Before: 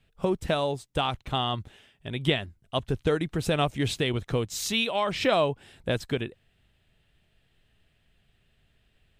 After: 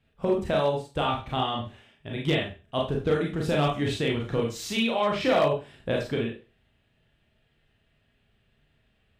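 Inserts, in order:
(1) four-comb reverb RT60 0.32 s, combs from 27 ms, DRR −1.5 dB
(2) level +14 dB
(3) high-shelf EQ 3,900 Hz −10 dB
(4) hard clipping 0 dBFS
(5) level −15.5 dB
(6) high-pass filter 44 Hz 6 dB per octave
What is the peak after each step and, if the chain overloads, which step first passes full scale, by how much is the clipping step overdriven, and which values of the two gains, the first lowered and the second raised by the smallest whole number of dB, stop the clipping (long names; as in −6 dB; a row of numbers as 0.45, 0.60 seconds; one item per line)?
−7.0, +7.0, +6.0, 0.0, −15.5, −14.0 dBFS
step 2, 6.0 dB
step 2 +8 dB, step 5 −9.5 dB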